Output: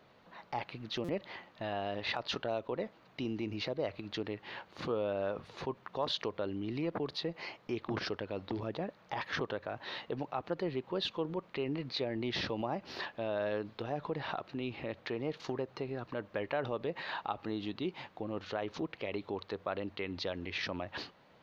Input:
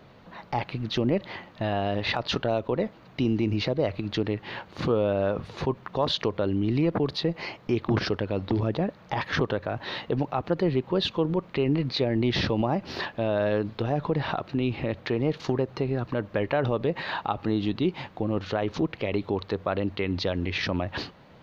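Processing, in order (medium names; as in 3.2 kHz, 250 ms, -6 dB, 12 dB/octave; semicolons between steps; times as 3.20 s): bass shelf 230 Hz -10.5 dB; buffer glitch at 1.04 s, samples 256, times 7; trim -7.5 dB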